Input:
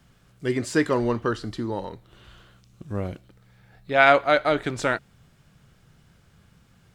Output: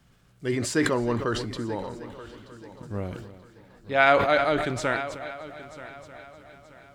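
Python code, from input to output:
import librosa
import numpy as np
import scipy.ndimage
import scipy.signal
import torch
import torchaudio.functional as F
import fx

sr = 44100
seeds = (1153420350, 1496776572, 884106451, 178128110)

y = fx.echo_heads(x, sr, ms=310, heads='first and third', feedback_pct=52, wet_db=-17)
y = fx.sustainer(y, sr, db_per_s=51.0)
y = y * 10.0 ** (-3.0 / 20.0)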